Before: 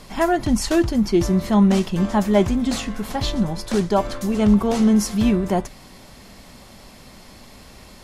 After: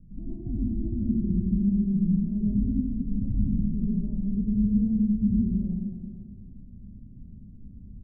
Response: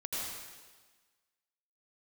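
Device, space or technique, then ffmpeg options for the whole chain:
club heard from the street: -filter_complex "[0:a]alimiter=limit=-16dB:level=0:latency=1:release=273,lowpass=frequency=210:width=0.5412,lowpass=frequency=210:width=1.3066[link_01];[1:a]atrim=start_sample=2205[link_02];[link_01][link_02]afir=irnorm=-1:irlink=0,aecho=1:1:215|430|645|860|1075:0.335|0.151|0.0678|0.0305|0.0137"

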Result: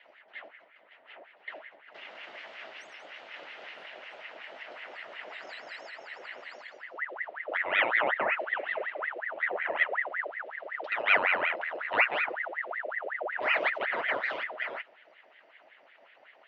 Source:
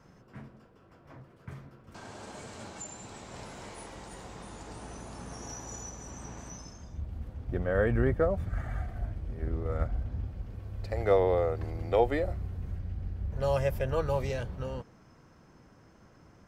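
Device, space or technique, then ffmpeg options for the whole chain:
voice changer toy: -af "aeval=exprs='val(0)*sin(2*PI*1200*n/s+1200*0.65/5.4*sin(2*PI*5.4*n/s))':channel_layout=same,highpass=440,equalizer=frequency=630:width_type=q:width=4:gain=8,equalizer=frequency=1100:width_type=q:width=4:gain=-5,equalizer=frequency=2000:width_type=q:width=4:gain=6,equalizer=frequency=2900:width_type=q:width=4:gain=8,lowpass=frequency=4100:width=0.5412,lowpass=frequency=4100:width=1.3066"

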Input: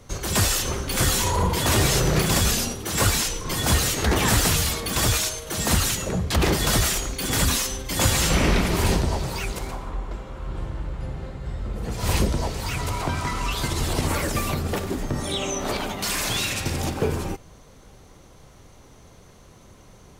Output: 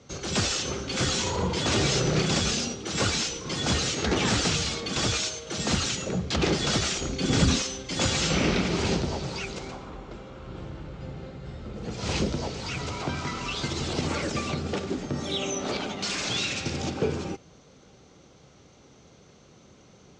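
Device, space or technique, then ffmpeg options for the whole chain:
car door speaker: -filter_complex "[0:a]lowpass=frequency=7600:width=0.5412,lowpass=frequency=7600:width=1.3066,highpass=100,equalizer=frequency=100:width_type=q:width=4:gain=-5,equalizer=frequency=660:width_type=q:width=4:gain=-3,equalizer=frequency=1000:width_type=q:width=4:gain=-7,equalizer=frequency=1800:width_type=q:width=4:gain=-5,lowpass=frequency=7200:width=0.5412,lowpass=frequency=7200:width=1.3066,asettb=1/sr,asplit=3[link_01][link_02][link_03];[link_01]atrim=end=7.014[link_04];[link_02]atrim=start=7.01:end=7.62,asetpts=PTS-STARTPTS,afade=type=in:duration=0.004:curve=qsin,afade=type=out:start_time=0.606:duration=0.004:curve=qsin,lowshelf=frequency=480:gain=8.5[link_05];[link_03]atrim=start=7.616[link_06];[link_04][link_05]acrossfade=duration=0.004:curve1=hsin:curve2=qsin[link_07];[link_07][link_06]acrossfade=duration=0.004:curve1=qsin:curve2=hsin,volume=-1.5dB"

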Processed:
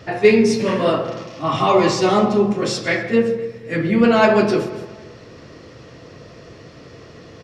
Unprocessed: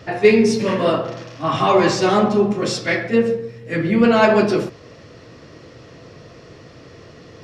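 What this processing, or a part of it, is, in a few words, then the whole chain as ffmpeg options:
ducked delay: -filter_complex "[0:a]asplit=3[link_01][link_02][link_03];[link_02]adelay=163,volume=-6dB[link_04];[link_03]apad=whole_len=335084[link_05];[link_04][link_05]sidechaincompress=threshold=-36dB:ratio=8:attack=16:release=145[link_06];[link_01][link_06]amix=inputs=2:normalize=0,asettb=1/sr,asplit=3[link_07][link_08][link_09];[link_07]atrim=end=1.194[link_10];[link_08]atrim=start=1.19:end=2.49,asetpts=PTS-STARTPTS,afade=type=in:duration=0.004:curve=qsin,afade=type=out:start_time=1.296:duration=0.004:curve=qsin,bandreject=frequency=1600:width=6.2[link_11];[link_09]atrim=start=2.486[link_12];[link_10][link_11]acrossfade=duration=0.004:curve1=hsin:curve2=qsin[link_13];[link_13][link_12]acrossfade=duration=0.004:curve1=qsin:curve2=hsin,asplit=2[link_14][link_15];[link_15]adelay=253,lowpass=frequency=3400:poles=1,volume=-19dB,asplit=2[link_16][link_17];[link_17]adelay=253,lowpass=frequency=3400:poles=1,volume=0.43,asplit=2[link_18][link_19];[link_19]adelay=253,lowpass=frequency=3400:poles=1,volume=0.43[link_20];[link_14][link_16][link_18][link_20]amix=inputs=4:normalize=0"

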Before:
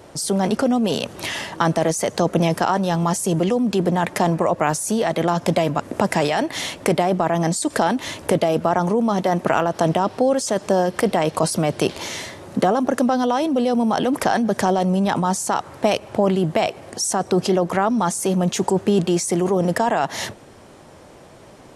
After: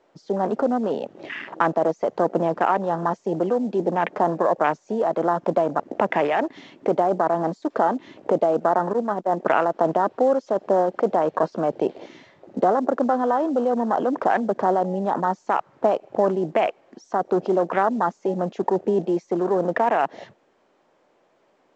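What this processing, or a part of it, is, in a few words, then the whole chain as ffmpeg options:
telephone: -filter_complex "[0:a]afwtdn=0.0501,asettb=1/sr,asplit=3[link_01][link_02][link_03];[link_01]atrim=end=8.934[link_04];[link_02]atrim=start=8.93:end=9.37,asetpts=PTS-STARTPTS,afade=type=in:duration=0.004:curve=qsin,afade=type=out:start_time=0.436:duration=0.004:curve=qsin,agate=range=-25dB:threshold=-18dB:ratio=16:detection=peak[link_05];[link_03]atrim=start=9.366[link_06];[link_04][link_05]acrossfade=duration=0.004:curve1=hsin:curve2=qsin[link_07];[link_07][link_06]acrossfade=duration=0.004:curve1=qsin:curve2=hsin,highpass=310,lowpass=3100" -ar 16000 -c:a pcm_mulaw

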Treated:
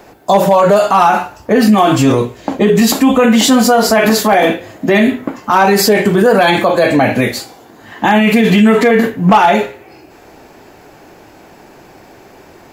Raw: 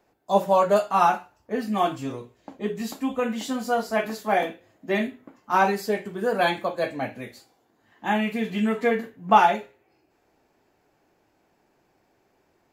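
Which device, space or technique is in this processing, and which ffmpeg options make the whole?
loud club master: -af "acompressor=threshold=-24dB:ratio=2,asoftclip=type=hard:threshold=-16.5dB,alimiter=level_in=27.5dB:limit=-1dB:release=50:level=0:latency=1,volume=-1dB"

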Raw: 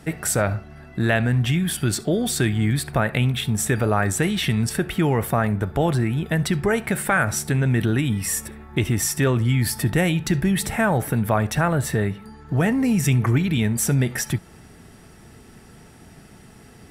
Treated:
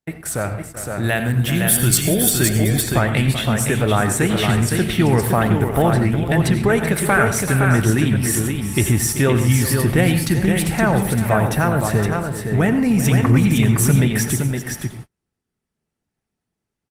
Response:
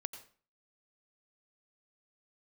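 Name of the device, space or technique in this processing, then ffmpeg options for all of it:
speakerphone in a meeting room: -filter_complex "[0:a]asplit=3[link_01][link_02][link_03];[link_01]afade=type=out:start_time=1.03:duration=0.02[link_04];[link_02]aemphasis=mode=production:type=50fm,afade=type=in:start_time=1.03:duration=0.02,afade=type=out:start_time=2.29:duration=0.02[link_05];[link_03]afade=type=in:start_time=2.29:duration=0.02[link_06];[link_04][link_05][link_06]amix=inputs=3:normalize=0,aecho=1:1:382|514:0.237|0.562[link_07];[1:a]atrim=start_sample=2205[link_08];[link_07][link_08]afir=irnorm=-1:irlink=0,dynaudnorm=framelen=480:gausssize=5:maxgain=7.5dB,agate=range=-40dB:threshold=-31dB:ratio=16:detection=peak" -ar 48000 -c:a libopus -b:a 24k

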